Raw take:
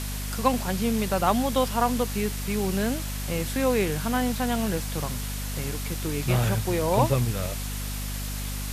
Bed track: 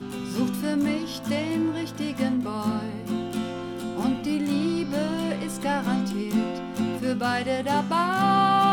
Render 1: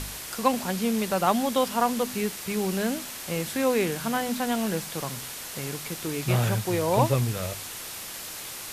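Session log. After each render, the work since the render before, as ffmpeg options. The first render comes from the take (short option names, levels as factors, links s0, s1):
-af "bandreject=f=50:t=h:w=4,bandreject=f=100:t=h:w=4,bandreject=f=150:t=h:w=4,bandreject=f=200:t=h:w=4,bandreject=f=250:t=h:w=4"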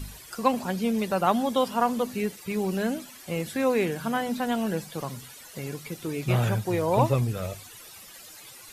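-af "afftdn=nr=14:nf=-38"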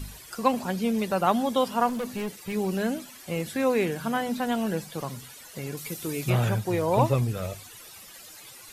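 -filter_complex "[0:a]asettb=1/sr,asplit=3[s0][s1][s2];[s0]atrim=end=1.894[s3];[s1]atrim=start=1.89:end=2.53,asetpts=PTS-STARTPTS,afade=t=in:d=0.004:c=qsin,afade=t=out:st=0.636:d=0.004:c=qsin,volume=23.7,asoftclip=hard,volume=0.0422[s4];[s2]atrim=start=2.526[s5];[s3][s4]acrossfade=d=0.004:c1=hsin:c2=qsin[s6];[s6][s5]acrossfade=d=0.004:c1=qsin:c2=hsin,asettb=1/sr,asplit=3[s7][s8][s9];[s7]atrim=end=5.774[s10];[s8]atrim=start=5.77:end=6.3,asetpts=PTS-STARTPTS,afade=t=in:d=0.004:c=qsin,afade=t=out:st=0.526:d=0.004:c=qsin,aemphasis=mode=production:type=cd[s11];[s9]atrim=start=6.296[s12];[s10][s11]acrossfade=d=0.004:c1=hsin:c2=qsin[s13];[s13][s12]acrossfade=d=0.004:c1=qsin:c2=hsin"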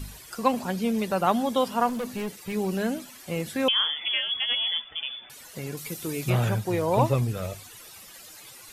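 -filter_complex "[0:a]asettb=1/sr,asplit=3[s0][s1][s2];[s0]atrim=end=3.684[s3];[s1]atrim=start=3.68:end=5.3,asetpts=PTS-STARTPTS,afade=t=in:d=0.004:c=qsin,afade=t=out:st=1.616:d=0.004:c=qsin,lowpass=f=3100:t=q:w=0.5098,lowpass=f=3100:t=q:w=0.6013,lowpass=f=3100:t=q:w=0.9,lowpass=f=3100:t=q:w=2.563,afreqshift=-3600[s4];[s2]atrim=start=5.296[s5];[s3][s4]acrossfade=d=0.004:c1=hsin:c2=qsin[s6];[s6][s5]acrossfade=d=0.004:c1=qsin:c2=hsin"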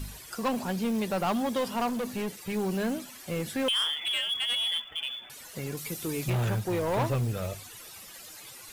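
-af "asoftclip=type=tanh:threshold=0.0708,acrusher=bits=6:mode=log:mix=0:aa=0.000001"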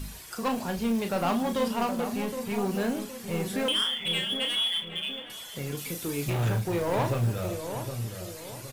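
-filter_complex "[0:a]asplit=2[s0][s1];[s1]adelay=35,volume=0.447[s2];[s0][s2]amix=inputs=2:normalize=0,asplit=2[s3][s4];[s4]adelay=767,lowpass=f=1100:p=1,volume=0.447,asplit=2[s5][s6];[s6]adelay=767,lowpass=f=1100:p=1,volume=0.44,asplit=2[s7][s8];[s8]adelay=767,lowpass=f=1100:p=1,volume=0.44,asplit=2[s9][s10];[s10]adelay=767,lowpass=f=1100:p=1,volume=0.44,asplit=2[s11][s12];[s12]adelay=767,lowpass=f=1100:p=1,volume=0.44[s13];[s3][s5][s7][s9][s11][s13]amix=inputs=6:normalize=0"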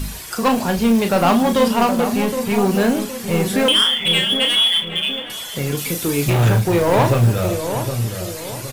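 -af "volume=3.98"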